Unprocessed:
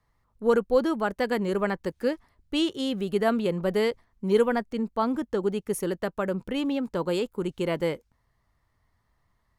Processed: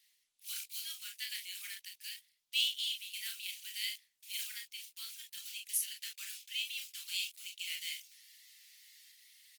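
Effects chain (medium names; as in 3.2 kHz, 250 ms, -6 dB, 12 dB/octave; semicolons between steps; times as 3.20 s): block-companded coder 5-bit; steep high-pass 2.5 kHz 36 dB/octave; reverse; upward compressor, threshold -43 dBFS; reverse; early reflections 32 ms -4.5 dB, 48 ms -8.5 dB; trim +1 dB; Opus 20 kbps 48 kHz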